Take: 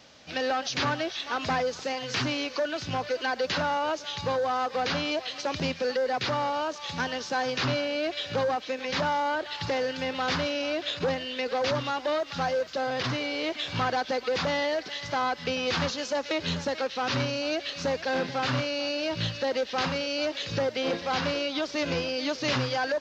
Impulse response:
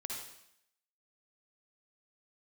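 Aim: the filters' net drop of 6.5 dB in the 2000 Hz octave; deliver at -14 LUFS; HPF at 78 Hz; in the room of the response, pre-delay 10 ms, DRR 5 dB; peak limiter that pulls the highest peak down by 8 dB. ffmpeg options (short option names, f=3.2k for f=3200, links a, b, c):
-filter_complex "[0:a]highpass=78,equalizer=f=2k:t=o:g=-9,alimiter=level_in=1.5dB:limit=-24dB:level=0:latency=1,volume=-1.5dB,asplit=2[a][b];[1:a]atrim=start_sample=2205,adelay=10[c];[b][c]afir=irnorm=-1:irlink=0,volume=-4.5dB[d];[a][d]amix=inputs=2:normalize=0,volume=18.5dB"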